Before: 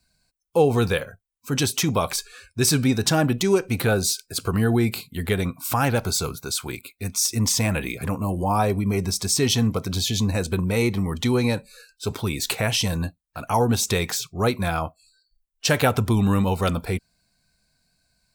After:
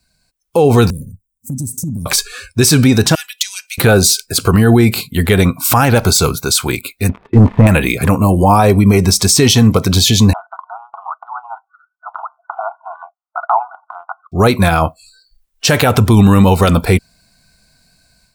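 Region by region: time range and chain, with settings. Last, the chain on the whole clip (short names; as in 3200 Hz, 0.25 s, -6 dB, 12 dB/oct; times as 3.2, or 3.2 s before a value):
0.9–2.06 elliptic band-stop 240–8300 Hz, stop band 50 dB + bell 13000 Hz -6.5 dB 0.76 oct + compressor 5:1, threshold -33 dBFS
3.15–3.78 ladder high-pass 2300 Hz, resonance 20% + comb 4.1 ms, depth 49%
7.09–7.67 de-esser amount 90% + Gaussian blur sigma 5.1 samples + sample leveller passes 2
10.33–14.32 compressor, threshold -21 dBFS + brick-wall FIR band-pass 650–1500 Hz + transient shaper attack +1 dB, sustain -6 dB
whole clip: limiter -15.5 dBFS; AGC gain up to 9 dB; gain +5.5 dB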